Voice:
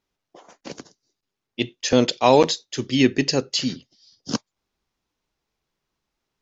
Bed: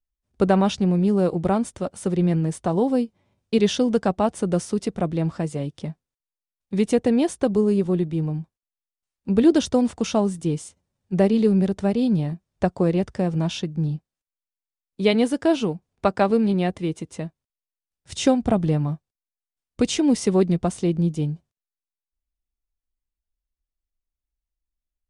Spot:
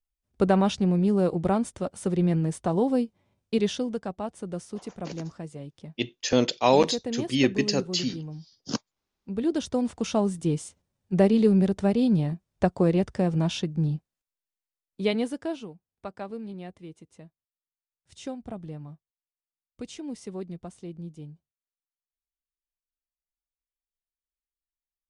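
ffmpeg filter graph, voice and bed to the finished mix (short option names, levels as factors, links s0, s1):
-filter_complex "[0:a]adelay=4400,volume=0.596[s0];[1:a]volume=2.37,afade=t=out:st=3.34:d=0.66:silence=0.354813,afade=t=in:st=9.35:d=1.19:silence=0.298538,afade=t=out:st=14.45:d=1.24:silence=0.158489[s1];[s0][s1]amix=inputs=2:normalize=0"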